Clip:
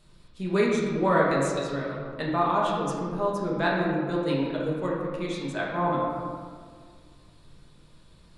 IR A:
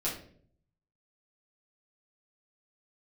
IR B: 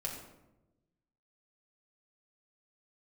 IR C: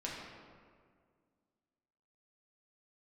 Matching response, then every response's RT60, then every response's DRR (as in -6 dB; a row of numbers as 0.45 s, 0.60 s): C; 0.55 s, 1.0 s, 1.9 s; -8.5 dB, -2.5 dB, -5.0 dB